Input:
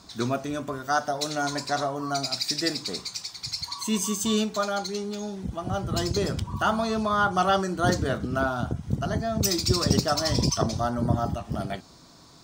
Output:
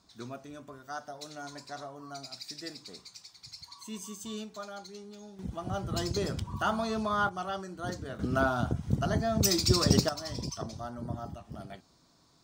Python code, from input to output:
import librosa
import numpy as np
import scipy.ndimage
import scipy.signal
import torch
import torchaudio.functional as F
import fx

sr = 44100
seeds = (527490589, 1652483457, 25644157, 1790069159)

y = fx.gain(x, sr, db=fx.steps((0.0, -15.0), (5.39, -5.5), (7.29, -13.5), (8.19, -1.5), (10.09, -13.0)))